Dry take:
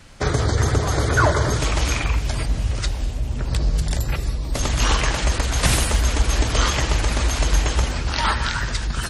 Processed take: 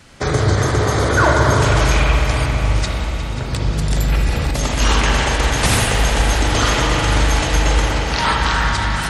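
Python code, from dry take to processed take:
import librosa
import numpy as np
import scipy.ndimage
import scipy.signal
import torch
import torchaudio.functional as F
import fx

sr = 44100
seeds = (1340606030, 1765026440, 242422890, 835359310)

y = fx.highpass(x, sr, hz=71.0, slope=6)
y = fx.echo_heads(y, sr, ms=179, heads='second and third', feedback_pct=56, wet_db=-14.0)
y = fx.rev_spring(y, sr, rt60_s=3.1, pass_ms=(39, 59), chirp_ms=25, drr_db=-1.5)
y = fx.env_flatten(y, sr, amount_pct=50, at=(3.97, 4.51))
y = y * librosa.db_to_amplitude(2.0)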